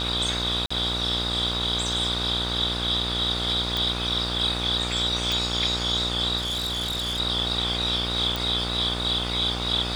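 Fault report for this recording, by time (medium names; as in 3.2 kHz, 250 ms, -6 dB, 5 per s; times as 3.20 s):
buzz 60 Hz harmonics 25 -31 dBFS
0.66–0.70 s: dropout 45 ms
3.77 s: pop
5.32 s: pop
6.37–7.20 s: clipped -24.5 dBFS
8.36 s: pop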